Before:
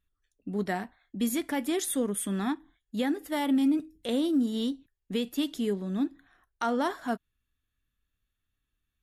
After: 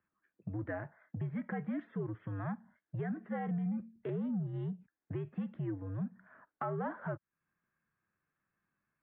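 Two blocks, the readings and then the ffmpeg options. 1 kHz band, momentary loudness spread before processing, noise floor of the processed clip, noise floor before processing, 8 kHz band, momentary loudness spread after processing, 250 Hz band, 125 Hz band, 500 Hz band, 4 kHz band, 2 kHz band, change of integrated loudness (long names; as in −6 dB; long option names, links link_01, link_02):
−9.5 dB, 9 LU, below −85 dBFS, −83 dBFS, below −40 dB, 8 LU, −10.5 dB, can't be measured, −9.5 dB, below −30 dB, −9.0 dB, −9.5 dB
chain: -af "acompressor=threshold=-45dB:ratio=3,asoftclip=type=tanh:threshold=-33.5dB,highpass=frequency=200:width_type=q:width=0.5412,highpass=frequency=200:width_type=q:width=1.307,lowpass=frequency=2100:width_type=q:width=0.5176,lowpass=frequency=2100:width_type=q:width=0.7071,lowpass=frequency=2100:width_type=q:width=1.932,afreqshift=-89,volume=7dB"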